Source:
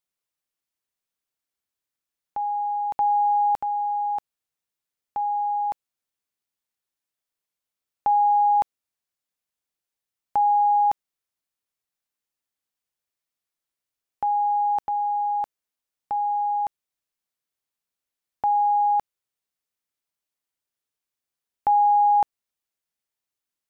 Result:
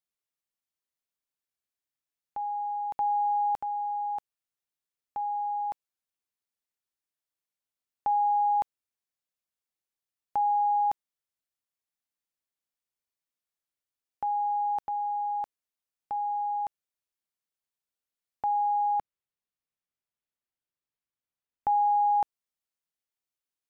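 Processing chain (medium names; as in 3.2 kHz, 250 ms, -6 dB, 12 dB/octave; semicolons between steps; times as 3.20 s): 18.97–21.88 s: tone controls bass +4 dB, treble -8 dB; trim -6 dB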